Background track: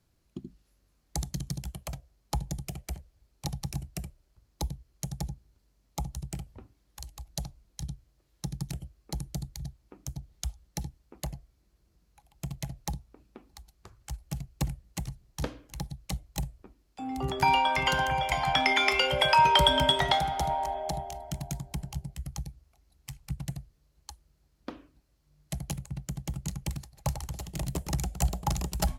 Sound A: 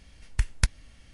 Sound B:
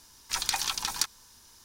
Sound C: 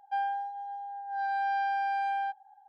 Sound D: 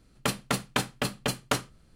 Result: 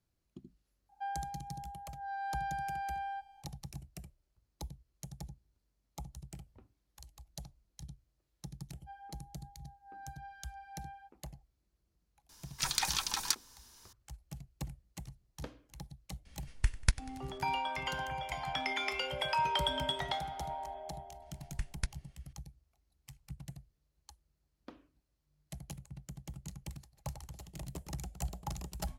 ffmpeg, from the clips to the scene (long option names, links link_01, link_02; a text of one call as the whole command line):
ffmpeg -i bed.wav -i cue0.wav -i cue1.wav -i cue2.wav -filter_complex "[3:a]asplit=2[link_01][link_02];[1:a]asplit=2[link_03][link_04];[0:a]volume=-11dB[link_05];[link_01]asplit=2[link_06][link_07];[link_07]adelay=220,highpass=300,lowpass=3400,asoftclip=type=hard:threshold=-33.5dB,volume=-18dB[link_08];[link_06][link_08]amix=inputs=2:normalize=0[link_09];[link_02]flanger=delay=19.5:depth=2.1:speed=1.2[link_10];[link_03]aecho=1:1:95|190|285|380:0.112|0.0595|0.0315|0.0167[link_11];[link_04]agate=range=-33dB:threshold=-51dB:ratio=3:release=100:detection=peak[link_12];[link_09]atrim=end=2.68,asetpts=PTS-STARTPTS,volume=-8.5dB,afade=type=in:duration=0.004:curve=hsin,afade=type=out:start_time=2.676:duration=0.004:curve=hsin,adelay=890[link_13];[link_10]atrim=end=2.68,asetpts=PTS-STARTPTS,volume=-18dB,afade=type=in:duration=0.004:curve=hsin,afade=type=out:start_time=2.676:duration=0.004:curve=hsin,adelay=8750[link_14];[2:a]atrim=end=1.64,asetpts=PTS-STARTPTS,volume=-3.5dB,afade=type=in:duration=0.004:curve=hsin,afade=type=out:start_time=1.636:duration=0.004:curve=hsin,adelay=12290[link_15];[link_11]atrim=end=1.13,asetpts=PTS-STARTPTS,volume=-4.5dB,afade=type=in:duration=0.004:curve=hsin,afade=type=out:start_time=1.126:duration=0.004:curve=hsin,adelay=16250[link_16];[link_12]atrim=end=1.13,asetpts=PTS-STARTPTS,volume=-12.5dB,afade=type=in:duration=0.004:curve=hsin,afade=type=out:start_time=1.126:duration=0.004:curve=hsin,adelay=21200[link_17];[link_05][link_13][link_14][link_15][link_16][link_17]amix=inputs=6:normalize=0" out.wav